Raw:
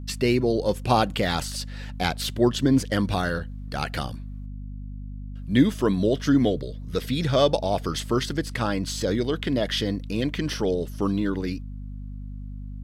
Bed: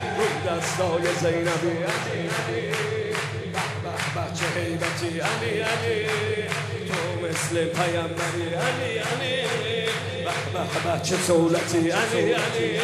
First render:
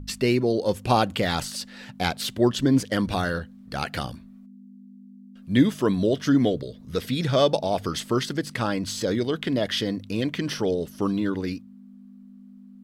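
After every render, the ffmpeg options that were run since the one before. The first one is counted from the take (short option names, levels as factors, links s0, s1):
-af "bandreject=f=50:t=h:w=4,bandreject=f=100:t=h:w=4,bandreject=f=150:t=h:w=4"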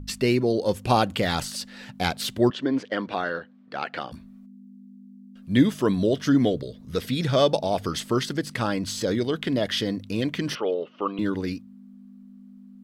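-filter_complex "[0:a]asettb=1/sr,asplit=3[s0][s1][s2];[s0]atrim=end=2.504[s3];[s1]atrim=start=2.5:end=4.12,asetpts=PTS-STARTPTS,afade=t=in:d=0.004:c=qsin,afade=t=out:st=1.616:d=0.004:c=qsin,highpass=320,lowpass=2900[s4];[s2]atrim=start=4.116[s5];[s3][s4]acrossfade=d=0.004:c1=hsin:c2=qsin[s6];[s6][s5]acrossfade=d=0.004:c1=qsin:c2=hsin,asettb=1/sr,asplit=3[s7][s8][s9];[s7]atrim=end=10.554[s10];[s8]atrim=start=10.55:end=11.19,asetpts=PTS-STARTPTS,afade=t=in:d=0.004:c=qsin,afade=t=out:st=0.636:d=0.004:c=qsin,highpass=410,equalizer=f=520:t=q:w=4:g=4,equalizer=f=1200:t=q:w=4:g=8,equalizer=f=1700:t=q:w=4:g=-7,equalizer=f=2800:t=q:w=4:g=8,lowpass=f=3000:w=0.5412,lowpass=f=3000:w=1.3066[s11];[s9]atrim=start=11.186[s12];[s10][s11]acrossfade=d=0.004:c1=hsin:c2=qsin[s13];[s13][s12]acrossfade=d=0.004:c1=qsin:c2=hsin"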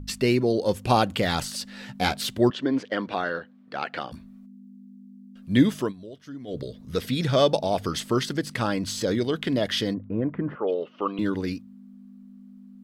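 -filter_complex "[0:a]asettb=1/sr,asplit=3[s0][s1][s2];[s0]atrim=end=1.654[s3];[s1]atrim=start=1.65:end=2.2,asetpts=PTS-STARTPTS,afade=t=in:d=0.004:c=qsin,afade=t=out:st=0.546:d=0.004:c=qsin,asplit=2[s4][s5];[s5]adelay=15,volume=0.562[s6];[s4][s6]amix=inputs=2:normalize=0,atrim=end_sample=24255[s7];[s2]atrim=start=2.196[s8];[s3][s7]acrossfade=d=0.004:c1=hsin:c2=qsin[s9];[s9][s8]acrossfade=d=0.004:c1=qsin:c2=hsin,asplit=3[s10][s11][s12];[s10]afade=t=out:st=9.93:d=0.02[s13];[s11]lowpass=f=1400:w=0.5412,lowpass=f=1400:w=1.3066,afade=t=in:st=9.93:d=0.02,afade=t=out:st=10.67:d=0.02[s14];[s12]afade=t=in:st=10.67:d=0.02[s15];[s13][s14][s15]amix=inputs=3:normalize=0,asplit=3[s16][s17][s18];[s16]atrim=end=5.93,asetpts=PTS-STARTPTS,afade=t=out:st=5.79:d=0.14:silence=0.105925[s19];[s17]atrim=start=5.93:end=6.47,asetpts=PTS-STARTPTS,volume=0.106[s20];[s18]atrim=start=6.47,asetpts=PTS-STARTPTS,afade=t=in:d=0.14:silence=0.105925[s21];[s19][s20][s21]concat=n=3:v=0:a=1"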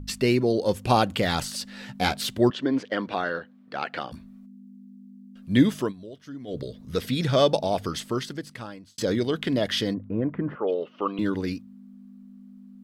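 -filter_complex "[0:a]asplit=2[s0][s1];[s0]atrim=end=8.98,asetpts=PTS-STARTPTS,afade=t=out:st=7.64:d=1.34[s2];[s1]atrim=start=8.98,asetpts=PTS-STARTPTS,afade=t=in:d=0.004:c=hsin[s3];[s2][s3]concat=n=2:v=0:a=1"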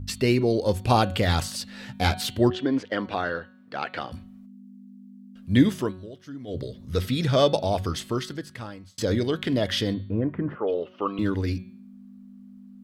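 -af "equalizer=f=90:w=3.7:g=13,bandreject=f=184.9:t=h:w=4,bandreject=f=369.8:t=h:w=4,bandreject=f=554.7:t=h:w=4,bandreject=f=739.6:t=h:w=4,bandreject=f=924.5:t=h:w=4,bandreject=f=1109.4:t=h:w=4,bandreject=f=1294.3:t=h:w=4,bandreject=f=1479.2:t=h:w=4,bandreject=f=1664.1:t=h:w=4,bandreject=f=1849:t=h:w=4,bandreject=f=2033.9:t=h:w=4,bandreject=f=2218.8:t=h:w=4,bandreject=f=2403.7:t=h:w=4,bandreject=f=2588.6:t=h:w=4,bandreject=f=2773.5:t=h:w=4,bandreject=f=2958.4:t=h:w=4,bandreject=f=3143.3:t=h:w=4,bandreject=f=3328.2:t=h:w=4,bandreject=f=3513.1:t=h:w=4,bandreject=f=3698:t=h:w=4,bandreject=f=3882.9:t=h:w=4,bandreject=f=4067.8:t=h:w=4,bandreject=f=4252.7:t=h:w=4,bandreject=f=4437.6:t=h:w=4"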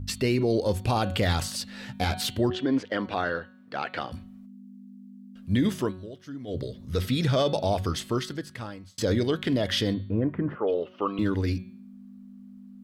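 -af "alimiter=limit=0.168:level=0:latency=1:release=32"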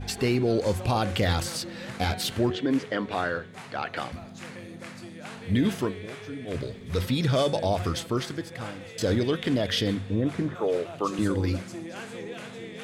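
-filter_complex "[1:a]volume=0.15[s0];[0:a][s0]amix=inputs=2:normalize=0"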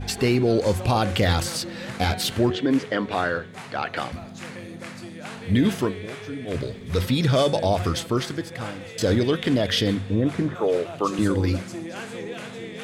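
-af "volume=1.58"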